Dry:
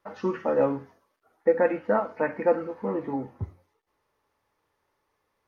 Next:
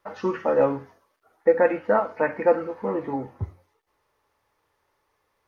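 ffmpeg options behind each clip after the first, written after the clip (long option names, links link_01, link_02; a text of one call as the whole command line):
ffmpeg -i in.wav -af "equalizer=frequency=220:width=1.1:gain=-4.5,volume=4dB" out.wav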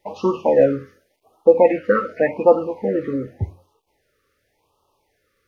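ffmpeg -i in.wav -af "afftfilt=real='re*(1-between(b*sr/1024,790*pow(1900/790,0.5+0.5*sin(2*PI*0.88*pts/sr))/1.41,790*pow(1900/790,0.5+0.5*sin(2*PI*0.88*pts/sr))*1.41))':imag='im*(1-between(b*sr/1024,790*pow(1900/790,0.5+0.5*sin(2*PI*0.88*pts/sr))/1.41,790*pow(1900/790,0.5+0.5*sin(2*PI*0.88*pts/sr))*1.41))':win_size=1024:overlap=0.75,volume=6dB" out.wav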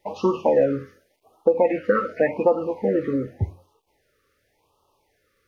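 ffmpeg -i in.wav -af "acompressor=threshold=-14dB:ratio=6" out.wav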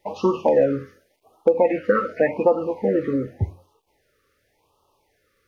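ffmpeg -i in.wav -af "asoftclip=type=hard:threshold=-7.5dB,volume=1dB" out.wav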